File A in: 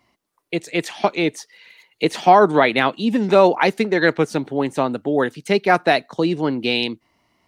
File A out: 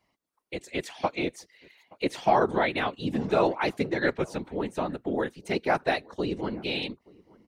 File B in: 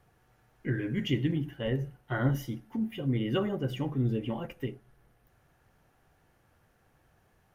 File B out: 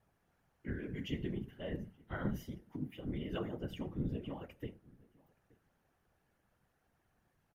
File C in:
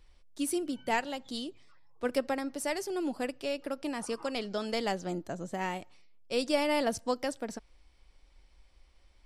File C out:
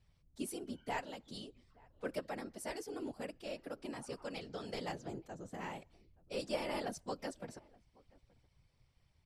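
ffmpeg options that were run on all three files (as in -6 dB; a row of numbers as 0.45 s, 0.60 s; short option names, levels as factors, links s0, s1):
-filter_complex "[0:a]afftfilt=real='hypot(re,im)*cos(2*PI*random(0))':imag='hypot(re,im)*sin(2*PI*random(1))':win_size=512:overlap=0.75,asplit=2[s0][s1];[s1]adelay=874.6,volume=0.0562,highshelf=f=4000:g=-19.7[s2];[s0][s2]amix=inputs=2:normalize=0,volume=0.631"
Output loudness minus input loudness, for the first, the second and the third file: -10.0 LU, -10.0 LU, -10.0 LU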